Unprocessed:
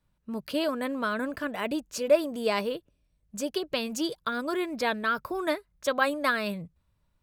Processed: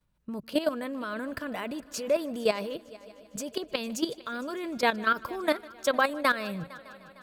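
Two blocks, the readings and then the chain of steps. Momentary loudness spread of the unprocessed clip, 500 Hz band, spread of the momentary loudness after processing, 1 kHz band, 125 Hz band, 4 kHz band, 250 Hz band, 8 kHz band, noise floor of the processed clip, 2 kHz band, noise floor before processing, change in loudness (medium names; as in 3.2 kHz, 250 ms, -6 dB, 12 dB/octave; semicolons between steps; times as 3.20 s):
10 LU, -1.5 dB, 15 LU, +0.5 dB, no reading, -1.0 dB, -1.5 dB, 0.0 dB, -57 dBFS, 0.0 dB, -73 dBFS, -1.0 dB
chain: level held to a coarse grid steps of 13 dB; on a send: multi-head delay 152 ms, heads first and third, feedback 63%, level -22.5 dB; on the sum: trim +4.5 dB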